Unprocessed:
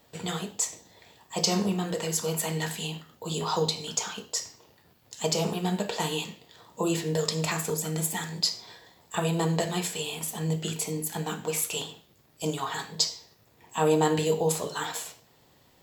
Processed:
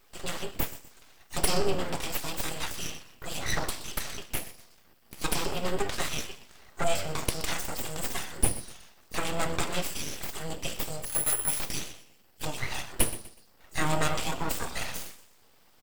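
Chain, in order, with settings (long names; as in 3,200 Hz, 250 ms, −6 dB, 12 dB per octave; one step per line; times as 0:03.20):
EQ curve with evenly spaced ripples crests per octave 1.3, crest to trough 14 dB
on a send: echo with shifted repeats 123 ms, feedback 35%, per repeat −93 Hz, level −15.5 dB
0:11.05–0:11.60: on the sum: bad sample-rate conversion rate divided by 4×, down filtered, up zero stuff
full-wave rectification
level −1 dB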